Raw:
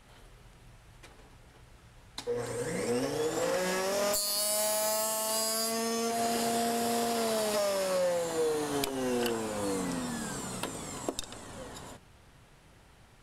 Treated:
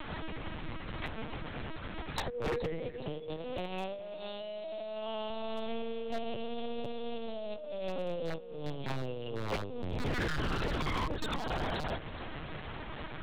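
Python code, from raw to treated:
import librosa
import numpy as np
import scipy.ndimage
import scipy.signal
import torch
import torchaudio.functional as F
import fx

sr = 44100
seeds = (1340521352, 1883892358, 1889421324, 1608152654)

y = fx.env_flanger(x, sr, rest_ms=2.5, full_db=-30.0)
y = 10.0 ** (-19.5 / 20.0) * np.tanh(y / 10.0 ** (-19.5 / 20.0))
y = y + 0.47 * np.pad(y, (int(6.5 * sr / 1000.0), 0))[:len(y)]
y = fx.over_compress(y, sr, threshold_db=-39.0, ratio=-0.5)
y = fx.lpc_vocoder(y, sr, seeds[0], excitation='pitch_kept', order=8)
y = fx.low_shelf(y, sr, hz=140.0, db=-9.5, at=(2.78, 5.3))
y = fx.echo_feedback(y, sr, ms=421, feedback_pct=38, wet_db=-19.5)
y = 10.0 ** (-33.0 / 20.0) * (np.abs((y / 10.0 ** (-33.0 / 20.0) + 3.0) % 4.0 - 2.0) - 1.0)
y = fx.band_squash(y, sr, depth_pct=40)
y = y * 10.0 ** (7.5 / 20.0)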